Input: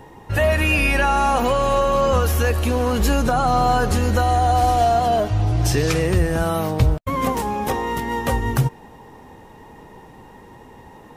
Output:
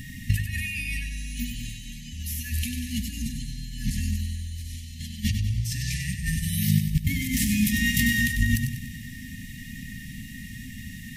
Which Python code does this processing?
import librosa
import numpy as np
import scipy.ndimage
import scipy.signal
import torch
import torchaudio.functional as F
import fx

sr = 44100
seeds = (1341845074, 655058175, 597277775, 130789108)

y = fx.high_shelf(x, sr, hz=4500.0, db=7.5)
y = fx.over_compress(y, sr, threshold_db=-24.0, ratio=-0.5)
y = fx.brickwall_bandstop(y, sr, low_hz=270.0, high_hz=1700.0)
y = fx.echo_feedback(y, sr, ms=96, feedback_pct=51, wet_db=-7.5)
y = y * 10.0 ** (1.0 / 20.0)